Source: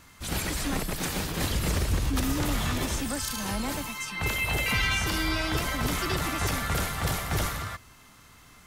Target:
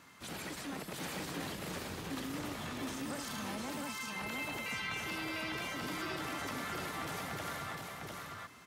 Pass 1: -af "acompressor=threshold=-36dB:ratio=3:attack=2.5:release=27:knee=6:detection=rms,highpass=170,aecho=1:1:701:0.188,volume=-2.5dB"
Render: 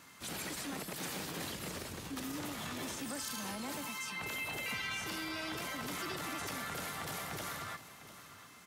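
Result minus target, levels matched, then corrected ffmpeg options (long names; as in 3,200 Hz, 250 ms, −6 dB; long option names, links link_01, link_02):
echo-to-direct −12 dB; 8,000 Hz band +3.5 dB
-af "acompressor=threshold=-36dB:ratio=3:attack=2.5:release=27:knee=6:detection=rms,highpass=170,highshelf=frequency=4500:gain=-7,aecho=1:1:701:0.75,volume=-2.5dB"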